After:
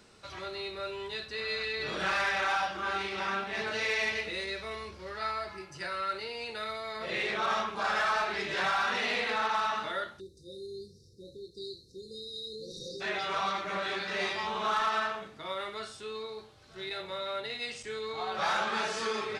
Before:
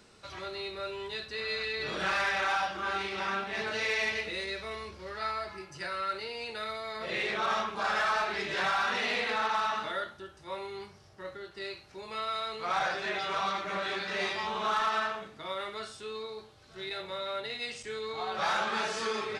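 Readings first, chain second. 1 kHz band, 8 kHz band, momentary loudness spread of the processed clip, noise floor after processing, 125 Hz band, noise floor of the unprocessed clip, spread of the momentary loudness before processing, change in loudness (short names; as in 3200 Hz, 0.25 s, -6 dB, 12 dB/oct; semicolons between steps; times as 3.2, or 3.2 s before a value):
-0.5 dB, 0.0 dB, 15 LU, -56 dBFS, 0.0 dB, -55 dBFS, 13 LU, 0.0 dB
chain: spectral delete 10.2–13.01, 550–3600 Hz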